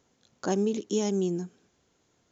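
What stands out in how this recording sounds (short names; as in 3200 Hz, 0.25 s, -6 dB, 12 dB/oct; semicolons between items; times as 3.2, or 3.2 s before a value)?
noise floor -71 dBFS; spectral tilt -5.5 dB/oct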